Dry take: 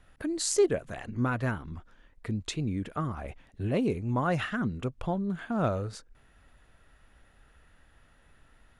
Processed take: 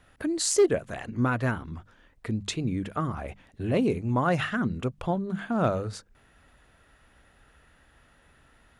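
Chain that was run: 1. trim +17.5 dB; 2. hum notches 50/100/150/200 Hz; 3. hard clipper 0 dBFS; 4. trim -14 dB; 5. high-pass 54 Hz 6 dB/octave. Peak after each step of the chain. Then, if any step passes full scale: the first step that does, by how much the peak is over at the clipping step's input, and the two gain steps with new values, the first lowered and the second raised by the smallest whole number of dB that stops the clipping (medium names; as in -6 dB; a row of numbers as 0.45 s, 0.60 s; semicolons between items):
+6.0 dBFS, +6.0 dBFS, 0.0 dBFS, -14.0 dBFS, -13.0 dBFS; step 1, 6.0 dB; step 1 +11.5 dB, step 4 -8 dB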